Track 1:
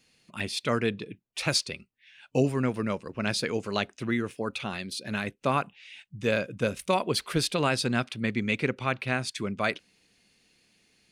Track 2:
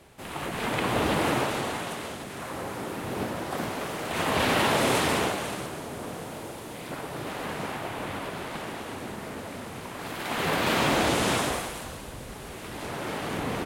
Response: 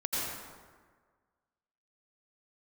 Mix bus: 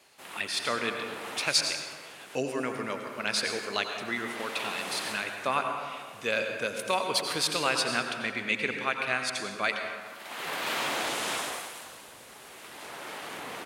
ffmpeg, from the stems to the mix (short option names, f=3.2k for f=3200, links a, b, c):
-filter_complex "[0:a]volume=-1dB,asplit=3[a][b][c];[b]volume=-7.5dB[d];[1:a]volume=-3dB[e];[c]apad=whole_len=602067[f];[e][f]sidechaincompress=threshold=-34dB:ratio=8:attack=7:release=883[g];[2:a]atrim=start_sample=2205[h];[d][h]afir=irnorm=-1:irlink=0[i];[a][g][i]amix=inputs=3:normalize=0,highpass=f=990:p=1"